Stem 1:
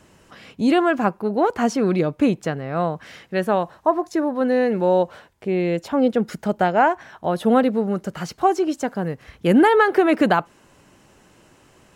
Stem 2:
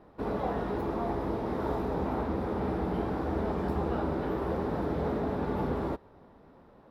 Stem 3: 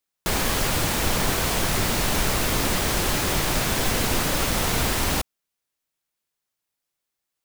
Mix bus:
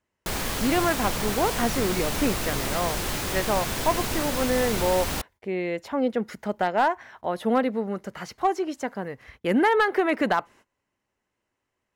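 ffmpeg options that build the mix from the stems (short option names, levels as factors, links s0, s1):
-filter_complex "[0:a]equalizer=f=160:t=o:w=0.33:g=-10,equalizer=f=315:t=o:w=0.33:g=-3,equalizer=f=1000:t=o:w=0.33:g=3,equalizer=f=2000:t=o:w=0.33:g=7,equalizer=f=8000:t=o:w=0.33:g=-3,volume=0.531[s0];[2:a]volume=0.531[s1];[s0][s1]amix=inputs=2:normalize=0,agate=range=0.0794:threshold=0.00355:ratio=16:detection=peak,asoftclip=type=hard:threshold=0.211"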